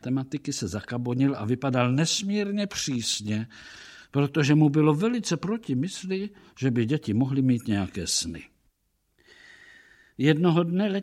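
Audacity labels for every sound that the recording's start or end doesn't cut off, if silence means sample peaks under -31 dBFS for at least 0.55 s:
4.140000	8.380000	sound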